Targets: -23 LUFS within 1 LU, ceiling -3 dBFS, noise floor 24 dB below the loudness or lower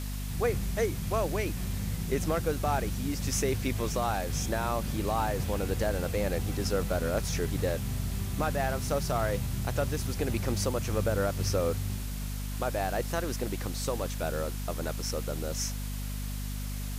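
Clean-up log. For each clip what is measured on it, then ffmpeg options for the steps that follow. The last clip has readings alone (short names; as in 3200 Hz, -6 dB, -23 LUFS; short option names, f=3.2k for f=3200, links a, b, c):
hum 50 Hz; harmonics up to 250 Hz; hum level -32 dBFS; noise floor -35 dBFS; noise floor target -56 dBFS; loudness -31.5 LUFS; peak -16.0 dBFS; loudness target -23.0 LUFS
-> -af "bandreject=f=50:t=h:w=6,bandreject=f=100:t=h:w=6,bandreject=f=150:t=h:w=6,bandreject=f=200:t=h:w=6,bandreject=f=250:t=h:w=6"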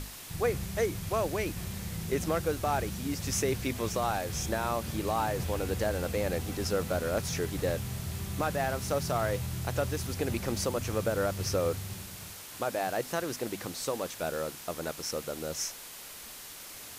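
hum none; noise floor -46 dBFS; noise floor target -57 dBFS
-> -af "afftdn=nr=11:nf=-46"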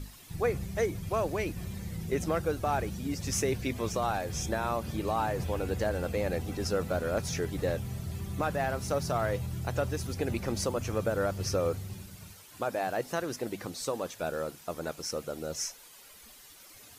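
noise floor -53 dBFS; noise floor target -57 dBFS
-> -af "afftdn=nr=6:nf=-53"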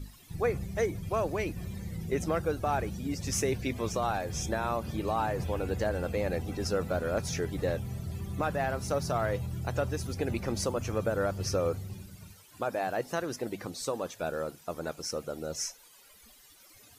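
noise floor -57 dBFS; loudness -32.5 LUFS; peak -18.0 dBFS; loudness target -23.0 LUFS
-> -af "volume=9.5dB"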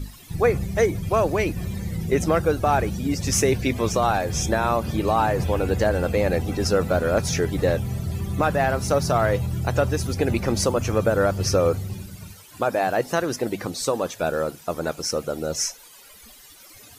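loudness -23.0 LUFS; peak -8.5 dBFS; noise floor -47 dBFS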